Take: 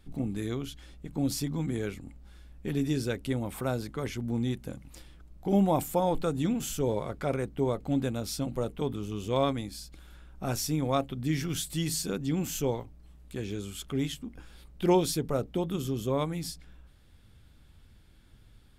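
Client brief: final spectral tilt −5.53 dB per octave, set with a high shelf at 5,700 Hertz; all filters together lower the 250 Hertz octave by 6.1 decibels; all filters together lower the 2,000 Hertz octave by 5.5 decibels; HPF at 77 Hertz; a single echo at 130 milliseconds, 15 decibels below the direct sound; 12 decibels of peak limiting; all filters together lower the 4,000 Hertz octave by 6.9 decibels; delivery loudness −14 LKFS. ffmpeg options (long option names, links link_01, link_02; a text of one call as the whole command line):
ffmpeg -i in.wav -af "highpass=77,equalizer=frequency=250:width_type=o:gain=-8.5,equalizer=frequency=2000:width_type=o:gain=-5,equalizer=frequency=4000:width_type=o:gain=-5.5,highshelf=frequency=5700:gain=-5,alimiter=level_in=4.5dB:limit=-24dB:level=0:latency=1,volume=-4.5dB,aecho=1:1:130:0.178,volume=25dB" out.wav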